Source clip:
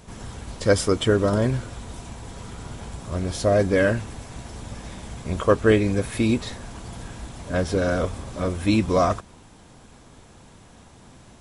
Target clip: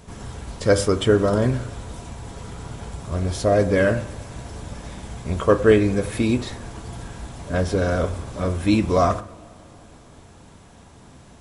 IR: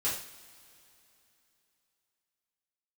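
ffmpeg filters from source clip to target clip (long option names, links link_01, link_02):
-filter_complex "[0:a]asplit=2[link_01][link_02];[1:a]atrim=start_sample=2205,lowpass=2000[link_03];[link_02][link_03]afir=irnorm=-1:irlink=0,volume=-13dB[link_04];[link_01][link_04]amix=inputs=2:normalize=0"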